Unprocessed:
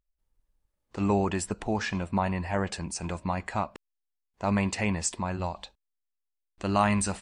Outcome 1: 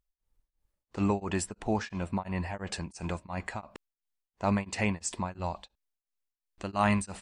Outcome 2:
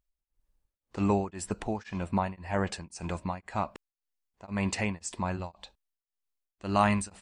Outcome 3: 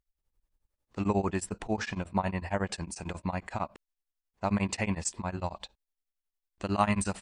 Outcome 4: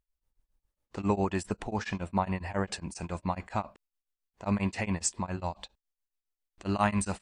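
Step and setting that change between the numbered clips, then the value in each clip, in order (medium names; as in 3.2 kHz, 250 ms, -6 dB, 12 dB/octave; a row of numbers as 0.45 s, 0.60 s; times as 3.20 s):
tremolo of two beating tones, nulls at: 2.9 Hz, 1.9 Hz, 11 Hz, 7.3 Hz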